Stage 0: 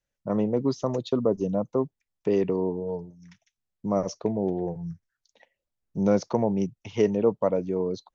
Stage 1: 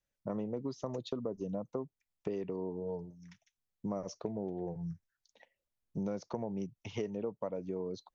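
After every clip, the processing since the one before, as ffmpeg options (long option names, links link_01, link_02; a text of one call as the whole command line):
ffmpeg -i in.wav -af "acompressor=threshold=-30dB:ratio=6,volume=-4dB" out.wav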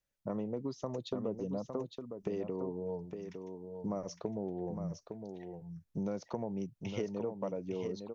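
ffmpeg -i in.wav -af "aecho=1:1:859:0.447" out.wav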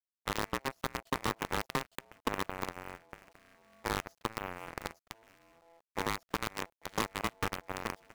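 ffmpeg -i in.wav -af "acrusher=bits=6:dc=4:mix=0:aa=0.000001,aeval=exprs='val(0)*sin(2*PI*670*n/s)':channel_layout=same,aeval=exprs='0.0794*(cos(1*acos(clip(val(0)/0.0794,-1,1)))-cos(1*PI/2))+0.000562*(cos(5*acos(clip(val(0)/0.0794,-1,1)))-cos(5*PI/2))+0.0141*(cos(7*acos(clip(val(0)/0.0794,-1,1)))-cos(7*PI/2))':channel_layout=same,volume=6dB" out.wav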